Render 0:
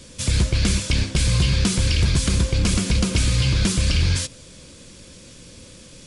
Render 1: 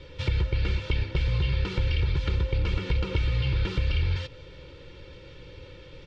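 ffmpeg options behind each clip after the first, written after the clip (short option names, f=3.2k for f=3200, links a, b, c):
-af "lowpass=f=3.4k:w=0.5412,lowpass=f=3.4k:w=1.3066,aecho=1:1:2.2:0.99,acompressor=threshold=-21dB:ratio=3,volume=-3dB"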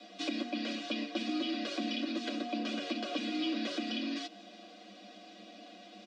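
-af "aecho=1:1:7.5:0.73,afreqshift=190,bass=f=250:g=-10,treble=f=4k:g=8,volume=-7dB"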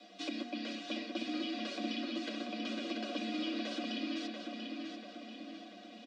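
-filter_complex "[0:a]asplit=2[a][b];[b]adelay=688,lowpass=f=4.5k:p=1,volume=-4dB,asplit=2[c][d];[d]adelay=688,lowpass=f=4.5k:p=1,volume=0.54,asplit=2[e][f];[f]adelay=688,lowpass=f=4.5k:p=1,volume=0.54,asplit=2[g][h];[h]adelay=688,lowpass=f=4.5k:p=1,volume=0.54,asplit=2[i][j];[j]adelay=688,lowpass=f=4.5k:p=1,volume=0.54,asplit=2[k][l];[l]adelay=688,lowpass=f=4.5k:p=1,volume=0.54,asplit=2[m][n];[n]adelay=688,lowpass=f=4.5k:p=1,volume=0.54[o];[a][c][e][g][i][k][m][o]amix=inputs=8:normalize=0,volume=-4dB"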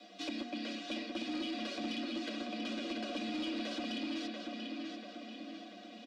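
-af "asoftclip=type=tanh:threshold=-31.5dB,volume=1dB"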